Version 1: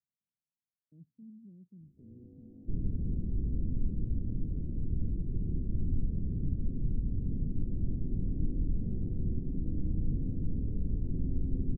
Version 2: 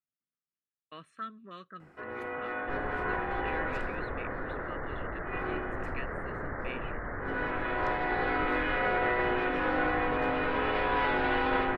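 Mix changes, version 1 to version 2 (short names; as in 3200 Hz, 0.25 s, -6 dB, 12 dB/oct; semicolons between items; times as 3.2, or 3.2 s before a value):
speech -3.0 dB; second sound -9.5 dB; master: remove inverse Chebyshev band-stop 1200–9000 Hz, stop band 80 dB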